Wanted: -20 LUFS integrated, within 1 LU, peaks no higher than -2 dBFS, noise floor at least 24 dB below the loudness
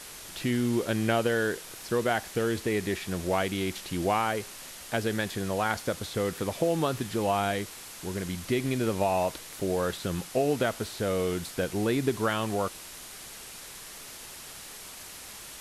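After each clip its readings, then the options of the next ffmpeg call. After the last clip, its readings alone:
noise floor -44 dBFS; noise floor target -54 dBFS; loudness -29.5 LUFS; peak -12.0 dBFS; loudness target -20.0 LUFS
-> -af "afftdn=nr=10:nf=-44"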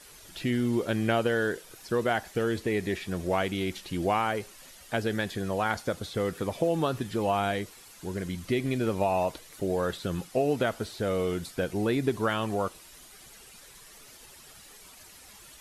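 noise floor -51 dBFS; noise floor target -54 dBFS
-> -af "afftdn=nr=6:nf=-51"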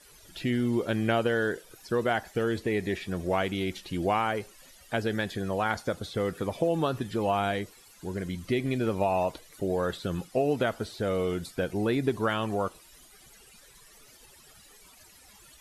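noise floor -55 dBFS; loudness -29.5 LUFS; peak -12.0 dBFS; loudness target -20.0 LUFS
-> -af "volume=9.5dB"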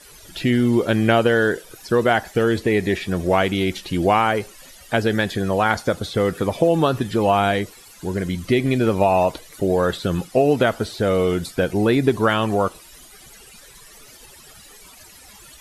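loudness -20.0 LUFS; peak -2.5 dBFS; noise floor -46 dBFS

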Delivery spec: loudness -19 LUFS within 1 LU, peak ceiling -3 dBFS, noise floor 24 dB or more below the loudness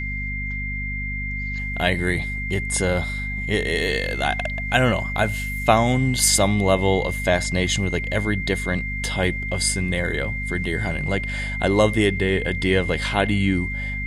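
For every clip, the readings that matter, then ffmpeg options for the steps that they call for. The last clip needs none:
hum 50 Hz; harmonics up to 250 Hz; hum level -27 dBFS; steady tone 2100 Hz; tone level -28 dBFS; loudness -22.0 LUFS; peak -2.5 dBFS; loudness target -19.0 LUFS
-> -af "bandreject=f=50:t=h:w=4,bandreject=f=100:t=h:w=4,bandreject=f=150:t=h:w=4,bandreject=f=200:t=h:w=4,bandreject=f=250:t=h:w=4"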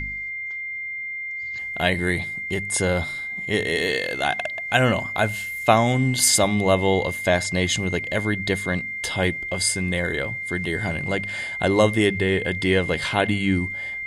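hum none; steady tone 2100 Hz; tone level -28 dBFS
-> -af "bandreject=f=2.1k:w=30"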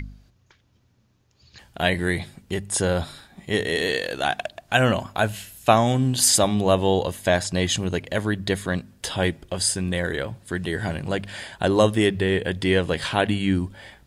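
steady tone none; loudness -23.0 LUFS; peak -3.0 dBFS; loudness target -19.0 LUFS
-> -af "volume=4dB,alimiter=limit=-3dB:level=0:latency=1"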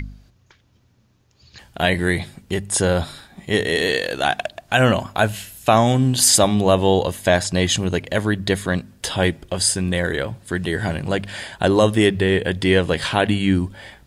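loudness -19.5 LUFS; peak -3.0 dBFS; noise floor -59 dBFS

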